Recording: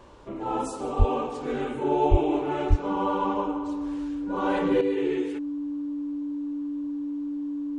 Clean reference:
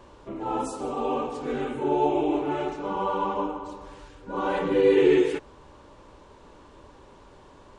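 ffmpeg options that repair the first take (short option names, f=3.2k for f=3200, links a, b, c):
-filter_complex "[0:a]bandreject=f=290:w=30,asplit=3[a][b][c];[a]afade=t=out:st=0.98:d=0.02[d];[b]highpass=f=140:w=0.5412,highpass=f=140:w=1.3066,afade=t=in:st=0.98:d=0.02,afade=t=out:st=1.1:d=0.02[e];[c]afade=t=in:st=1.1:d=0.02[f];[d][e][f]amix=inputs=3:normalize=0,asplit=3[g][h][i];[g]afade=t=out:st=2.1:d=0.02[j];[h]highpass=f=140:w=0.5412,highpass=f=140:w=1.3066,afade=t=in:st=2.1:d=0.02,afade=t=out:st=2.22:d=0.02[k];[i]afade=t=in:st=2.22:d=0.02[l];[j][k][l]amix=inputs=3:normalize=0,asplit=3[m][n][o];[m]afade=t=out:st=2.69:d=0.02[p];[n]highpass=f=140:w=0.5412,highpass=f=140:w=1.3066,afade=t=in:st=2.69:d=0.02,afade=t=out:st=2.81:d=0.02[q];[o]afade=t=in:st=2.81:d=0.02[r];[p][q][r]amix=inputs=3:normalize=0,asetnsamples=n=441:p=0,asendcmd='4.81 volume volume 9dB',volume=0dB"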